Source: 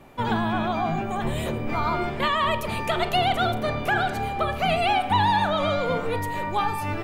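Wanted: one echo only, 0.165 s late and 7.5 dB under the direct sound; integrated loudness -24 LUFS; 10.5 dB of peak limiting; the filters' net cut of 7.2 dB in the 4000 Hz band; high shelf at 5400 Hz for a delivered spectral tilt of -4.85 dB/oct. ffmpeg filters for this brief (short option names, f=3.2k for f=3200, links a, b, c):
-af "equalizer=f=4k:t=o:g=-8.5,highshelf=f=5.4k:g=-5,alimiter=limit=-22.5dB:level=0:latency=1,aecho=1:1:165:0.422,volume=6dB"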